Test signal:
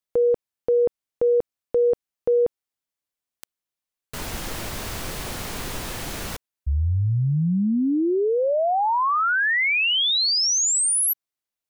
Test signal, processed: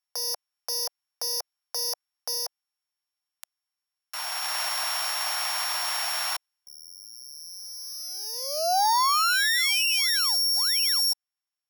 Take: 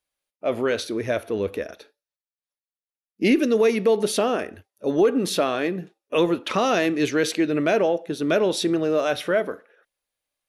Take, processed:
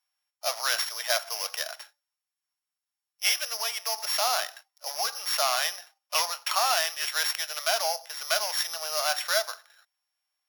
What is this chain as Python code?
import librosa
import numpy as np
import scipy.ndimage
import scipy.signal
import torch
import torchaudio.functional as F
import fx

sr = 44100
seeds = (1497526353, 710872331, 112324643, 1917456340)

y = np.r_[np.sort(x[:len(x) // 8 * 8].reshape(-1, 8), axis=1).ravel(), x[len(x) // 8 * 8:]]
y = fx.rider(y, sr, range_db=5, speed_s=0.5)
y = scipy.signal.sosfilt(scipy.signal.butter(8, 710.0, 'highpass', fs=sr, output='sos'), y)
y = y * 10.0 ** (1.0 / 20.0)